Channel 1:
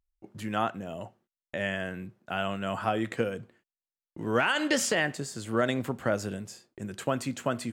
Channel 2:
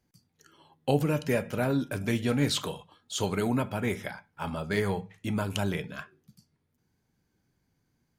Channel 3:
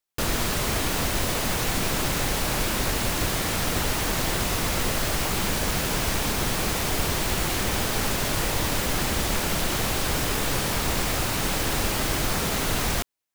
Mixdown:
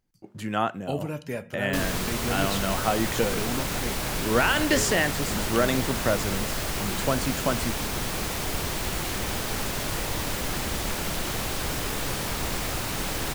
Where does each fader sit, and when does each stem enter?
+3.0, −5.5, −4.0 decibels; 0.00, 0.00, 1.55 seconds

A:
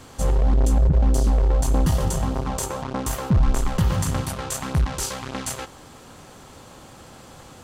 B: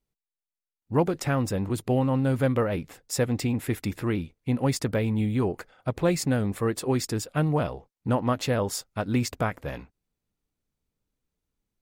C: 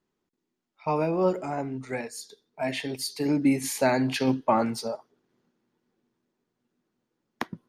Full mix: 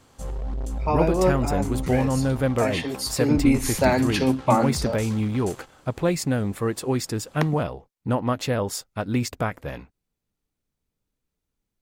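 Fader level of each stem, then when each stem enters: −11.5, +1.0, +3.0 decibels; 0.00, 0.00, 0.00 seconds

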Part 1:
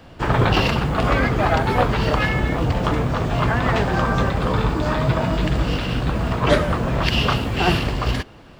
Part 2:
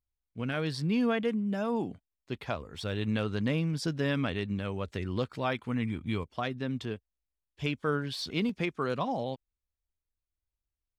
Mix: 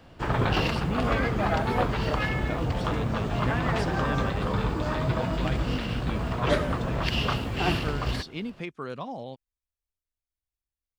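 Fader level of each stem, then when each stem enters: −7.5, −4.5 decibels; 0.00, 0.00 seconds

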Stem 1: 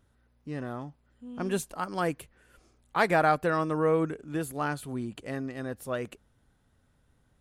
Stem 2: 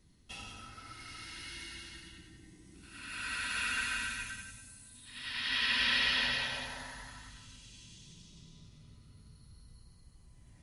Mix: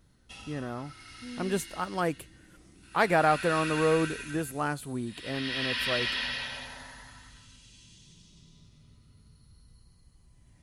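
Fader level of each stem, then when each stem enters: 0.0, −1.0 decibels; 0.00, 0.00 seconds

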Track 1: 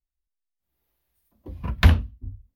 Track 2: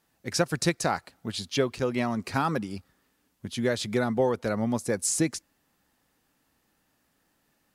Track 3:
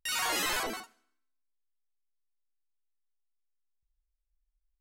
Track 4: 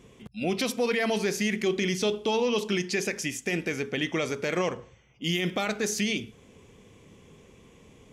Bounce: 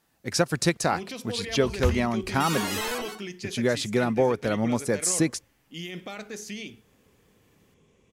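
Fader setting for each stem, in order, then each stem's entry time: −10.5, +2.0, −0.5, −9.5 decibels; 0.00, 0.00, 2.35, 0.50 seconds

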